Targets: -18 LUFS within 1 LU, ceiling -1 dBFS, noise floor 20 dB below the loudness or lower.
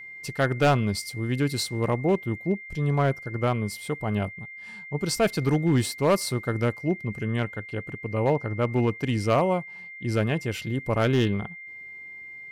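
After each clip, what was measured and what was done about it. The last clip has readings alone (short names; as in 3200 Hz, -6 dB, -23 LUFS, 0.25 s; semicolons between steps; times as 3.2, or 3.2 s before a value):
clipped 0.7%; flat tops at -14.5 dBFS; steady tone 2100 Hz; tone level -39 dBFS; loudness -26.0 LUFS; peak -14.5 dBFS; loudness target -18.0 LUFS
-> clip repair -14.5 dBFS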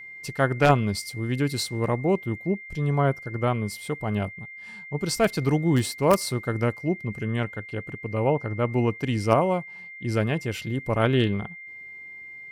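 clipped 0.0%; steady tone 2100 Hz; tone level -39 dBFS
-> notch 2100 Hz, Q 30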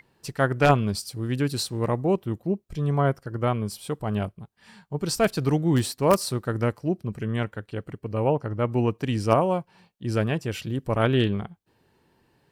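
steady tone none; loudness -25.5 LUFS; peak -5.5 dBFS; loudness target -18.0 LUFS
-> gain +7.5 dB; limiter -1 dBFS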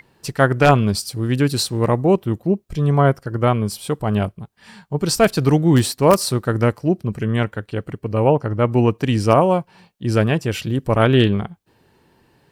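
loudness -18.5 LUFS; peak -1.0 dBFS; noise floor -60 dBFS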